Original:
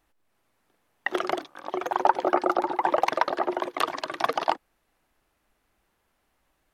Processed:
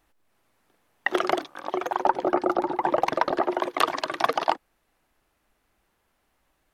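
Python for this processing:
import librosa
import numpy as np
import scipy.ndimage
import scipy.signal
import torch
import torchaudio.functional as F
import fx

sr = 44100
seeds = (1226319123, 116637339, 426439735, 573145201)

y = fx.low_shelf(x, sr, hz=330.0, db=12.0, at=(2.06, 3.41))
y = fx.rider(y, sr, range_db=4, speed_s=0.5)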